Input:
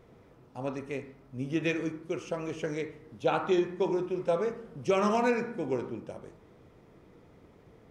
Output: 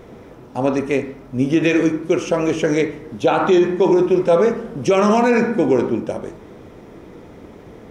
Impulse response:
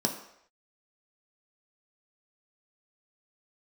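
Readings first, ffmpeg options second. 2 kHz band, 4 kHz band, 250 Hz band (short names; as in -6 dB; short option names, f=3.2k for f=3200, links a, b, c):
+12.5 dB, +12.0 dB, +15.5 dB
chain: -filter_complex "[0:a]asplit=2[a][b];[1:a]atrim=start_sample=2205[c];[b][c]afir=irnorm=-1:irlink=0,volume=-22dB[d];[a][d]amix=inputs=2:normalize=0,alimiter=level_in=21dB:limit=-1dB:release=50:level=0:latency=1,volume=-5.5dB"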